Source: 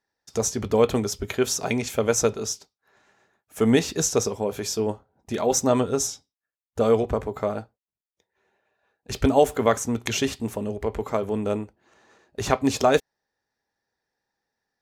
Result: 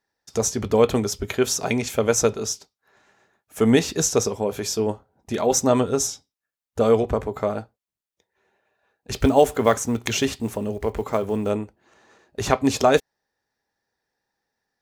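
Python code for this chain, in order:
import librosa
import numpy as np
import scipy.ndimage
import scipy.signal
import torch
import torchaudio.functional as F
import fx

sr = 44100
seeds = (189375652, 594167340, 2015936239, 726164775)

y = fx.block_float(x, sr, bits=7, at=(9.18, 11.51))
y = y * 10.0 ** (2.0 / 20.0)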